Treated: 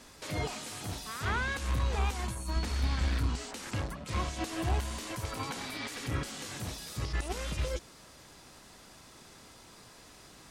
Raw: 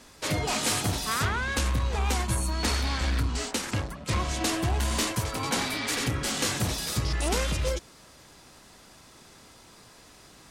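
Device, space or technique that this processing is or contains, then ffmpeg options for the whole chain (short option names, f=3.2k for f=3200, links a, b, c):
de-esser from a sidechain: -filter_complex "[0:a]asettb=1/sr,asplit=3[a][b][c];[a]atrim=end=2.564[d];[b]atrim=start=2.56:end=3.08,asetpts=PTS-STARTPTS,afade=t=in:d=0.004:c=qsin,afade=t=out:st=0.516:d=0.004:c=qsin,bass=f=250:g=7,treble=f=4k:g=-1[e];[c]atrim=start=3.076[f];[d][e]acrossfade=d=0.004:c1=hsin:c2=qsin[g];[g][f]acrossfade=d=0.004:c1=qsin:c2=hsin,asplit=2[h][i];[i]highpass=f=4.2k:w=0.5412,highpass=f=4.2k:w=1.3066,apad=whole_len=463168[j];[h][j]sidechaincompress=threshold=-44dB:ratio=4:attack=2:release=28,volume=-1.5dB"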